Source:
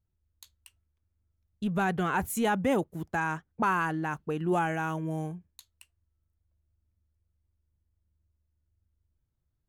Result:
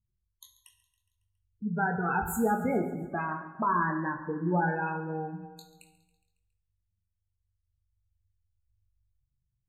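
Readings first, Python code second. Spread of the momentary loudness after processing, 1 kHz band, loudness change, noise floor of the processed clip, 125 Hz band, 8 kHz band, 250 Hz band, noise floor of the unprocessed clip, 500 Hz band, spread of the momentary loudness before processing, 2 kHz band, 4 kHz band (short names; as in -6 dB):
9 LU, +0.5 dB, -0.5 dB, -82 dBFS, -0.5 dB, -3.0 dB, -0.5 dB, -80 dBFS, -1.0 dB, 7 LU, -1.0 dB, under -10 dB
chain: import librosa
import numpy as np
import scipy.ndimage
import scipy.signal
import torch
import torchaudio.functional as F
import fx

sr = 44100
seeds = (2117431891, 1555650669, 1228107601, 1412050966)

p1 = fx.spec_ripple(x, sr, per_octave=1.2, drift_hz=-0.31, depth_db=9)
p2 = fx.spec_gate(p1, sr, threshold_db=-15, keep='strong')
p3 = fx.doubler(p2, sr, ms=23.0, db=-7.0)
p4 = p3 + fx.echo_feedback(p3, sr, ms=138, feedback_pct=59, wet_db=-17.5, dry=0)
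p5 = fx.rev_plate(p4, sr, seeds[0], rt60_s=1.0, hf_ratio=0.7, predelay_ms=0, drr_db=6.0)
y = p5 * 10.0 ** (-2.5 / 20.0)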